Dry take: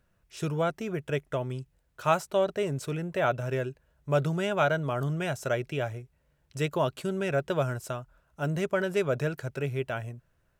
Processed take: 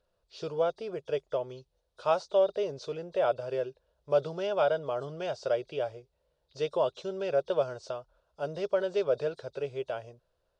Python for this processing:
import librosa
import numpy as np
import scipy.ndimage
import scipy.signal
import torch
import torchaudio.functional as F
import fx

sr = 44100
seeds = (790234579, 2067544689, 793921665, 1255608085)

y = fx.freq_compress(x, sr, knee_hz=3300.0, ratio=1.5)
y = fx.graphic_eq(y, sr, hz=(125, 250, 500, 1000, 2000, 4000, 8000), db=(-7, -7, 12, 3, -8, 12, -6))
y = y * 10.0 ** (-7.5 / 20.0)